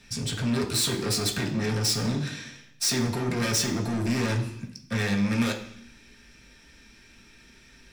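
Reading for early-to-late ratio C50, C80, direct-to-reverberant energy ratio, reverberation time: 9.5 dB, 12.5 dB, −1.0 dB, 0.65 s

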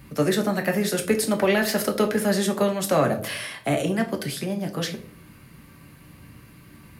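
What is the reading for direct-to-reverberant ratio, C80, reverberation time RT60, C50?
3.0 dB, 17.5 dB, 0.50 s, 12.5 dB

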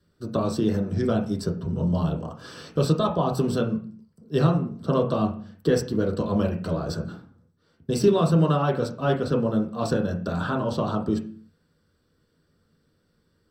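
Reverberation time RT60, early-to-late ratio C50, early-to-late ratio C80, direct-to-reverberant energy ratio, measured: 0.45 s, 10.0 dB, 14.5 dB, 0.0 dB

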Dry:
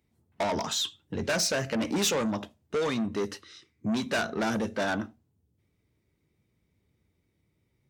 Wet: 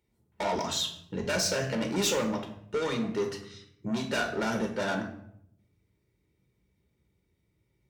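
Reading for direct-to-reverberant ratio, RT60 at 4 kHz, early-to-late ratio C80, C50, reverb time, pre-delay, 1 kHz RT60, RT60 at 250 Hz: 3.5 dB, 0.50 s, 12.0 dB, 8.5 dB, 0.70 s, 5 ms, 0.65 s, 1.1 s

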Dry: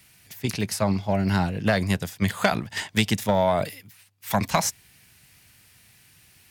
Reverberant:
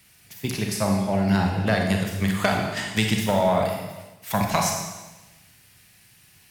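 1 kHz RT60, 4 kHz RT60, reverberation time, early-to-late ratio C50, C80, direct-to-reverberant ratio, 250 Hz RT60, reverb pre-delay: 1.1 s, 1.1 s, 1.1 s, 3.0 dB, 6.0 dB, 1.0 dB, 1.2 s, 29 ms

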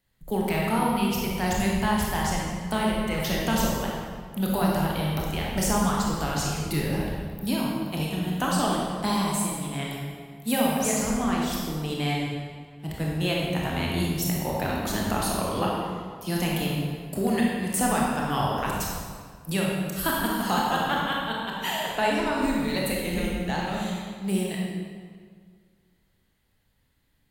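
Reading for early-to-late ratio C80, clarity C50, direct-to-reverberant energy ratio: 1.0 dB, −1.0 dB, −3.5 dB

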